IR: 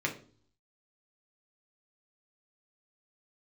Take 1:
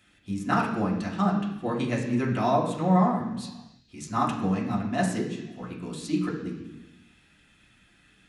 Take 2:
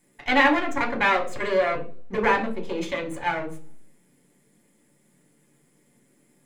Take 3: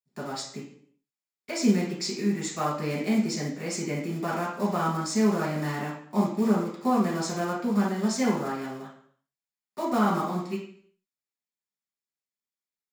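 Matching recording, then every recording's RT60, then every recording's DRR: 2; 1.2, 0.45, 0.60 seconds; −4.5, 0.0, −5.0 decibels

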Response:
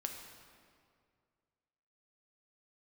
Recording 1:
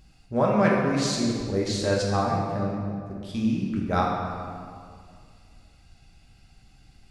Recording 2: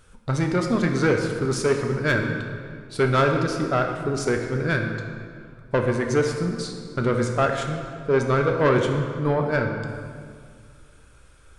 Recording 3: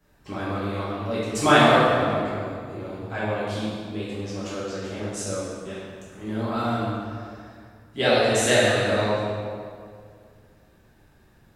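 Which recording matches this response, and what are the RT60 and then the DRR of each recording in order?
2; 2.2, 2.2, 2.2 seconds; −3.0, 2.5, −10.5 decibels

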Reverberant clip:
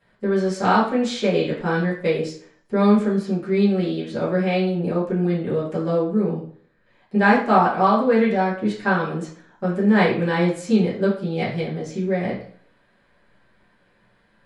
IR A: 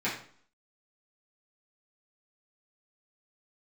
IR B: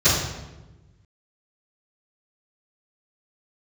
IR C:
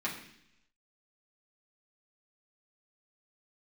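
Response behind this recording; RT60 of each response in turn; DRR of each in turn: A; 0.50, 1.1, 0.70 seconds; −10.0, −19.0, −5.5 decibels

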